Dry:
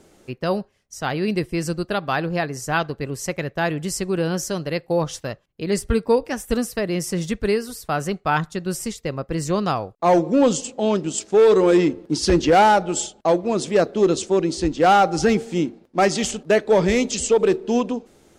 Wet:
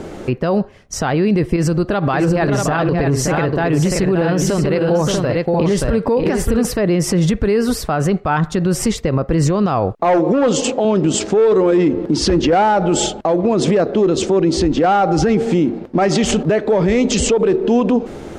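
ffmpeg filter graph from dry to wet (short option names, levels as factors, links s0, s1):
-filter_complex "[0:a]asettb=1/sr,asplit=3[s0][s1][s2];[s0]atrim=end=1.564[s3];[s1]atrim=start=1.56:end=6.65,asetpts=PTS-STARTPTS,afade=t=in:d=0.004:c=qsin,afade=t=out:st=5.086:d=0.004:c=qsin,acompressor=threshold=0.0282:ratio=3:attack=3.2:release=140:knee=1:detection=peak,aecho=1:1:576|639:0.376|0.447,atrim=end_sample=224469[s4];[s2]atrim=start=6.646[s5];[s3][s4]acrossfade=d=0.004:c1=hsin:c2=qsin[s6];[s6][s5]acrossfade=d=0.004:c1=qsin:c2=hsin,asettb=1/sr,asplit=3[s7][s8][s9];[s7]atrim=end=10.044[s10];[s8]atrim=start=10.04:end=10.85,asetpts=PTS-STARTPTS,afade=t=in:d=0.004:c=qsin,afade=t=out:st=0.806:d=0.004:c=qsin,lowpass=9400,asoftclip=type=hard:threshold=0.224,bass=f=250:g=-9,treble=f=4000:g=0[s11];[s9]atrim=start=10.846[s12];[s10][s11]acrossfade=d=0.004:c1=hsin:c2=qsin[s13];[s13][s12]acrossfade=d=0.004:c1=qsin:c2=hsin,lowpass=f=1600:p=1,acompressor=threshold=0.0447:ratio=6,alimiter=level_in=31.6:limit=0.891:release=50:level=0:latency=1,volume=0.473"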